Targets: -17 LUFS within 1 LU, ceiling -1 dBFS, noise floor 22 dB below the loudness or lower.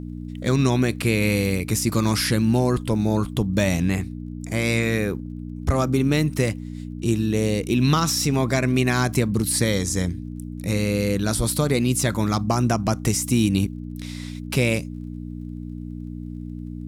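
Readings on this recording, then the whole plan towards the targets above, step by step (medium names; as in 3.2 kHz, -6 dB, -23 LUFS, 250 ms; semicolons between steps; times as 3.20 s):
tick rate 27 per s; hum 60 Hz; highest harmonic 300 Hz; hum level -30 dBFS; loudness -22.0 LUFS; peak level -7.0 dBFS; loudness target -17.0 LUFS
-> de-click; de-hum 60 Hz, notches 5; trim +5 dB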